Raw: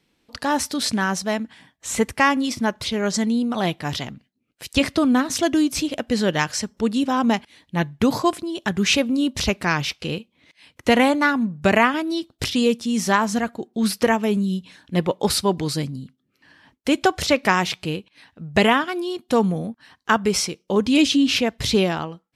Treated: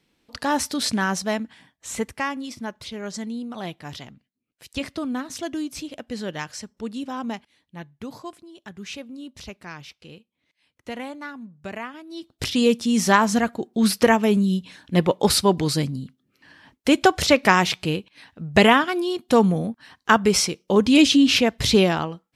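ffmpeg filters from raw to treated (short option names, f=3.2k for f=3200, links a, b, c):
-af "volume=18dB,afade=t=out:st=1.29:d=1:silence=0.354813,afade=t=out:st=7.2:d=0.68:silence=0.446684,afade=t=in:st=12.09:d=0.2:silence=0.251189,afade=t=in:st=12.29:d=0.51:silence=0.446684"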